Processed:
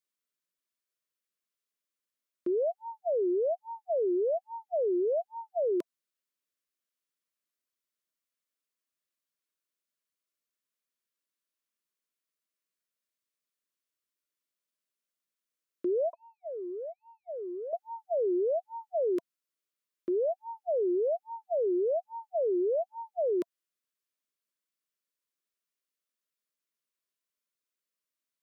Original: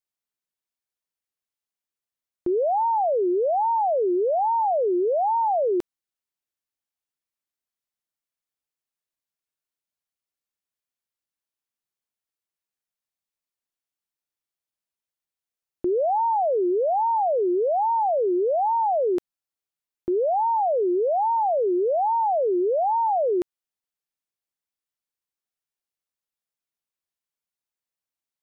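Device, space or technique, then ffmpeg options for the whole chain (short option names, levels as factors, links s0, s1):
PA system with an anti-feedback notch: -filter_complex "[0:a]asettb=1/sr,asplit=3[s0][s1][s2];[s0]atrim=end=16.134[s3];[s1]atrim=start=16.13:end=17.73,asetpts=PTS-STARTPTS,afade=t=in:d=0.004:c=qsin,afade=t=out:st=1.596:d=0.004:c=qsin,agate=range=0.0224:threshold=0.251:ratio=3:detection=peak[s4];[s2]atrim=start=17.726[s5];[s3][s4]acrossfade=d=0.004:c1=hsin:c2=qsin[s6];[s6][s5]acrossfade=d=0.004:c1=qsin:c2=hsin,highpass=f=170:w=0.5412,highpass=f=170:w=1.3066,asuperstop=centerf=810:order=12:qfactor=2.8,alimiter=level_in=1.06:limit=0.0631:level=0:latency=1:release=76,volume=0.944"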